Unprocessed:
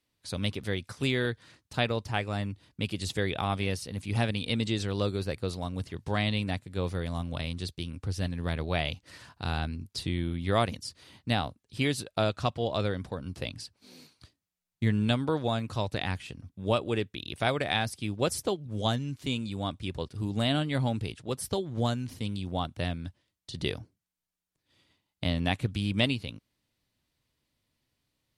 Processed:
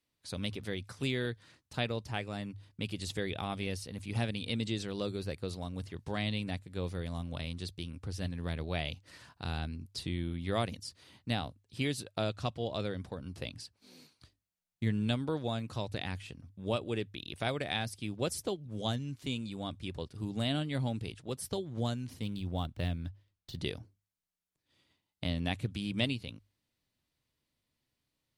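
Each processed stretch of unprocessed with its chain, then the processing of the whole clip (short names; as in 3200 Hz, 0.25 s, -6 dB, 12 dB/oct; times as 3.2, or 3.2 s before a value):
22.22–23.59 median filter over 5 samples + low shelf 78 Hz +11.5 dB
whole clip: notches 50/100 Hz; dynamic EQ 1100 Hz, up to -4 dB, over -40 dBFS, Q 0.8; gain -4.5 dB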